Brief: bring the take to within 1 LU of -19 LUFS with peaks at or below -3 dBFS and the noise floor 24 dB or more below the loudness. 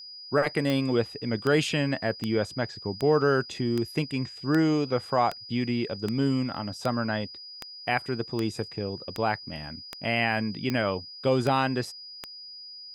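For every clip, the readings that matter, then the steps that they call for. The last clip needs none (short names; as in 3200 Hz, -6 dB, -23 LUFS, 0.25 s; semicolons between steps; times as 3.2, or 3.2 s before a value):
clicks 16; steady tone 4900 Hz; tone level -41 dBFS; loudness -27.5 LUFS; peak -9.5 dBFS; loudness target -19.0 LUFS
-> de-click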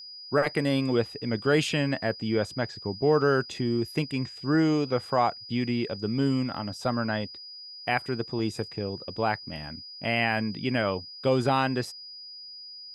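clicks 0; steady tone 4900 Hz; tone level -41 dBFS
-> notch 4900 Hz, Q 30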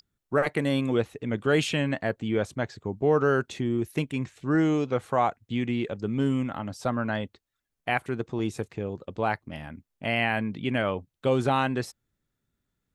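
steady tone none; loudness -27.5 LUFS; peak -10.0 dBFS; loudness target -19.0 LUFS
-> gain +8.5 dB; limiter -3 dBFS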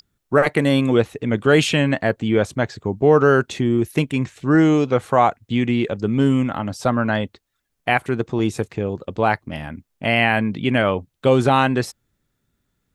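loudness -19.5 LUFS; peak -3.0 dBFS; noise floor -74 dBFS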